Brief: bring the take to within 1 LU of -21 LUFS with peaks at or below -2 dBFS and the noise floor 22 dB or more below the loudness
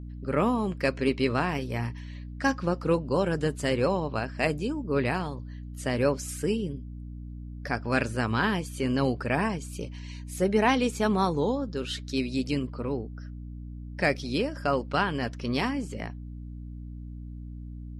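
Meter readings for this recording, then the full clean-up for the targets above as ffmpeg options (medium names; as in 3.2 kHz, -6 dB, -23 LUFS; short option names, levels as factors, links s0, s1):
hum 60 Hz; highest harmonic 300 Hz; hum level -37 dBFS; loudness -28.0 LUFS; peak level -10.0 dBFS; loudness target -21.0 LUFS
-> -af "bandreject=f=60:t=h:w=6,bandreject=f=120:t=h:w=6,bandreject=f=180:t=h:w=6,bandreject=f=240:t=h:w=6,bandreject=f=300:t=h:w=6"
-af "volume=2.24"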